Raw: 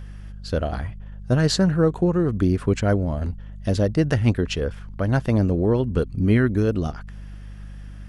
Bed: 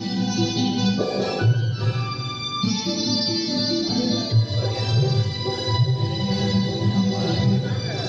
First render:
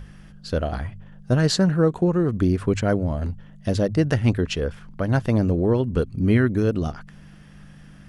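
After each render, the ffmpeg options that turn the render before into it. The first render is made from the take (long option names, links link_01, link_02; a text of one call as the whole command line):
ffmpeg -i in.wav -af "bandreject=frequency=50:width_type=h:width=4,bandreject=frequency=100:width_type=h:width=4" out.wav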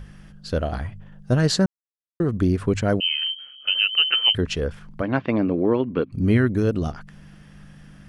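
ffmpeg -i in.wav -filter_complex "[0:a]asettb=1/sr,asplit=3[link_01][link_02][link_03];[link_01]atrim=end=3.004[link_04];[link_02]atrim=start=3:end=4.35,asetpts=PTS-STARTPTS,afade=type=in:duration=0.004:curve=qsin,afade=type=out:start_time=1.346:duration=0.004:curve=qsin,lowpass=frequency=2700:width_type=q:width=0.5098,lowpass=frequency=2700:width_type=q:width=0.6013,lowpass=frequency=2700:width_type=q:width=0.9,lowpass=frequency=2700:width_type=q:width=2.563,afreqshift=-3200[link_05];[link_03]atrim=start=4.346[link_06];[link_04][link_05]acrossfade=duration=0.004:curve1=hsin:curve2=qsin[link_07];[link_07][link_06]acrossfade=duration=0.004:curve1=qsin:curve2=hsin,asplit=3[link_08][link_09][link_10];[link_08]afade=type=out:start_time=5.01:duration=0.02[link_11];[link_09]highpass=200,equalizer=frequency=290:width_type=q:width=4:gain=6,equalizer=frequency=1100:width_type=q:width=4:gain=5,equalizer=frequency=2300:width_type=q:width=4:gain=8,lowpass=frequency=3700:width=0.5412,lowpass=frequency=3700:width=1.3066,afade=type=in:start_time=5.01:duration=0.02,afade=type=out:start_time=6.11:duration=0.02[link_12];[link_10]afade=type=in:start_time=6.11:duration=0.02[link_13];[link_11][link_12][link_13]amix=inputs=3:normalize=0,asplit=3[link_14][link_15][link_16];[link_14]atrim=end=1.66,asetpts=PTS-STARTPTS,afade=type=out:start_time=1.656:duration=0.004:curve=hsin[link_17];[link_15]atrim=start=1.66:end=2.2,asetpts=PTS-STARTPTS,volume=0[link_18];[link_16]atrim=start=2.2,asetpts=PTS-STARTPTS,afade=type=in:duration=0.004:curve=hsin[link_19];[link_17][link_18][link_19]concat=n=3:v=0:a=1" out.wav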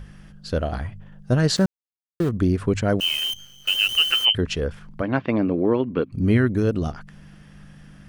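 ffmpeg -i in.wav -filter_complex "[0:a]asettb=1/sr,asplit=3[link_01][link_02][link_03];[link_01]atrim=end=1.564[link_04];[link_02]atrim=start=1.56:end=2.29,asetpts=PTS-STARTPTS,afade=type=in:duration=0.004:curve=qsin,afade=type=out:start_time=0.726:duration=0.004:curve=qsin,aeval=exprs='val(0)*gte(abs(val(0)),0.0237)':channel_layout=same[link_05];[link_03]atrim=start=2.286[link_06];[link_04][link_05]acrossfade=duration=0.004:curve1=hsin:curve2=qsin[link_07];[link_07][link_06]acrossfade=duration=0.004:curve1=qsin:curve2=hsin,asplit=3[link_08][link_09][link_10];[link_08]afade=type=out:start_time=2.99:duration=0.02[link_11];[link_09]acrusher=bits=6:dc=4:mix=0:aa=0.000001,afade=type=in:start_time=2.99:duration=0.02,afade=type=out:start_time=4.24:duration=0.02[link_12];[link_10]afade=type=in:start_time=4.24:duration=0.02[link_13];[link_11][link_12][link_13]amix=inputs=3:normalize=0" out.wav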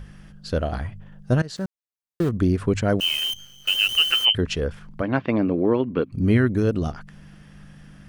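ffmpeg -i in.wav -filter_complex "[0:a]asplit=2[link_01][link_02];[link_01]atrim=end=1.42,asetpts=PTS-STARTPTS,afade=type=out:start_time=1.416:duration=0.004:curve=hsin:silence=0.0891251[link_03];[link_02]atrim=start=1.42,asetpts=PTS-STARTPTS,afade=type=in:duration=0.79:silence=0.0891251[link_04];[link_03][link_04]concat=n=2:v=0:a=1" out.wav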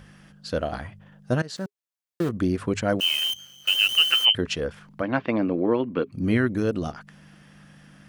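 ffmpeg -i in.wav -af "highpass=frequency=230:poles=1,bandreject=frequency=410:width=12" out.wav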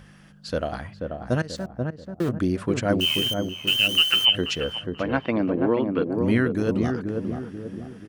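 ffmpeg -i in.wav -filter_complex "[0:a]asplit=2[link_01][link_02];[link_02]adelay=485,lowpass=frequency=850:poles=1,volume=-3.5dB,asplit=2[link_03][link_04];[link_04]adelay=485,lowpass=frequency=850:poles=1,volume=0.49,asplit=2[link_05][link_06];[link_06]adelay=485,lowpass=frequency=850:poles=1,volume=0.49,asplit=2[link_07][link_08];[link_08]adelay=485,lowpass=frequency=850:poles=1,volume=0.49,asplit=2[link_09][link_10];[link_10]adelay=485,lowpass=frequency=850:poles=1,volume=0.49,asplit=2[link_11][link_12];[link_12]adelay=485,lowpass=frequency=850:poles=1,volume=0.49[link_13];[link_01][link_03][link_05][link_07][link_09][link_11][link_13]amix=inputs=7:normalize=0" out.wav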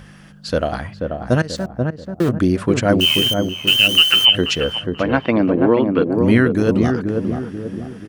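ffmpeg -i in.wav -af "volume=7.5dB,alimiter=limit=-1dB:level=0:latency=1" out.wav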